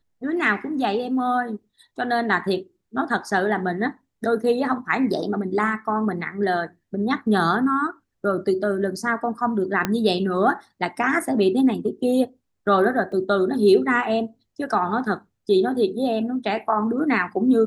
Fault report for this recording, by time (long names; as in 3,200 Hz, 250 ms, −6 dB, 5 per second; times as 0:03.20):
0:09.85: click −7 dBFS
0:13.12: drop-out 2.8 ms